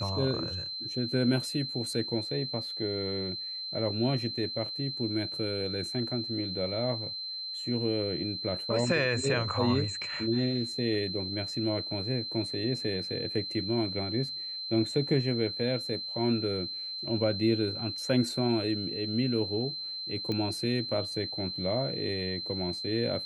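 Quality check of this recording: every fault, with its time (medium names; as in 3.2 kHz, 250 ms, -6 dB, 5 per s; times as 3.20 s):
whine 4.1 kHz -35 dBFS
20.32 s: pop -21 dBFS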